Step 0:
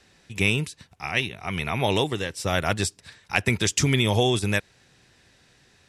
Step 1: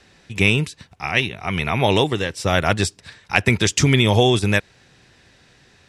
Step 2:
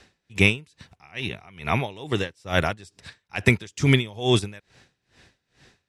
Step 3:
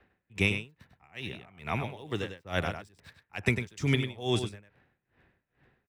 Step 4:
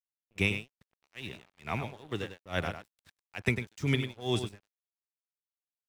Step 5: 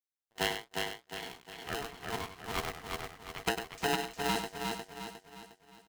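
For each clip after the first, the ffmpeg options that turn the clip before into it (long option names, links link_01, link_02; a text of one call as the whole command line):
ffmpeg -i in.wav -af "highshelf=frequency=9100:gain=-10.5,volume=6dB" out.wav
ffmpeg -i in.wav -af "aeval=exprs='val(0)*pow(10,-26*(0.5-0.5*cos(2*PI*2.3*n/s))/20)':channel_layout=same" out.wav
ffmpeg -i in.wav -filter_complex "[0:a]acrossover=split=250|1400|2500[link_01][link_02][link_03][link_04];[link_04]aeval=exprs='sgn(val(0))*max(abs(val(0))-0.00224,0)':channel_layout=same[link_05];[link_01][link_02][link_03][link_05]amix=inputs=4:normalize=0,asplit=2[link_06][link_07];[link_07]adelay=99.13,volume=-8dB,highshelf=frequency=4000:gain=-2.23[link_08];[link_06][link_08]amix=inputs=2:normalize=0,volume=-8.5dB" out.wav
ffmpeg -i in.wav -af "aeval=exprs='sgn(val(0))*max(abs(val(0))-0.00299,0)':channel_layout=same,volume=-1.5dB" out.wav
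ffmpeg -i in.wav -filter_complex "[0:a]asplit=2[link_01][link_02];[link_02]aecho=0:1:357|714|1071|1428|1785|2142:0.668|0.294|0.129|0.0569|0.0251|0.011[link_03];[link_01][link_03]amix=inputs=2:normalize=0,aeval=exprs='val(0)*sgn(sin(2*PI*570*n/s))':channel_layout=same,volume=-4dB" out.wav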